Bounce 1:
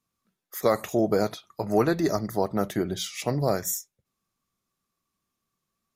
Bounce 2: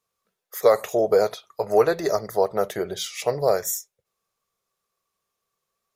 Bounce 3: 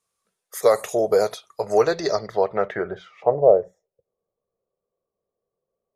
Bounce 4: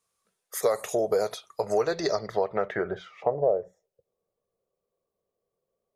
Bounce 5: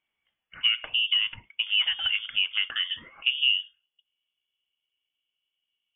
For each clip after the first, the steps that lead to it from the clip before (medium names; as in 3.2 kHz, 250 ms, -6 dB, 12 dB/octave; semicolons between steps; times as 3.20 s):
resonant low shelf 360 Hz -7.5 dB, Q 3; trim +2 dB
low-pass sweep 9.7 kHz -> 530 Hz, 1.60–3.56 s
compression 2.5:1, threshold -24 dBFS, peak gain reduction 10.5 dB
frequency inversion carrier 3.4 kHz